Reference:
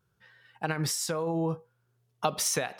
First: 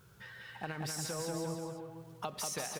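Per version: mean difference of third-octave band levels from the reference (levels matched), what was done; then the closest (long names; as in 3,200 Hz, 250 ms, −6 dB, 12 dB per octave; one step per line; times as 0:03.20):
12.0 dB: mu-law and A-law mismatch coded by mu
downward compressor 2 to 1, threshold −55 dBFS, peak gain reduction 18 dB
bouncing-ball delay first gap 190 ms, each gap 0.85×, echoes 5
level +4 dB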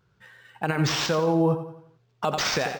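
6.5 dB: on a send: repeating echo 88 ms, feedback 44%, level −11 dB
on the sum: brickwall limiter −21.5 dBFS, peak gain reduction 10 dB
linearly interpolated sample-rate reduction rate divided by 4×
level +8 dB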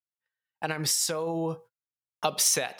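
4.0 dB: low-shelf EQ 390 Hz −11 dB
noise gate −52 dBFS, range −38 dB
dynamic equaliser 1,300 Hz, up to −6 dB, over −47 dBFS, Q 0.89
level +6 dB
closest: third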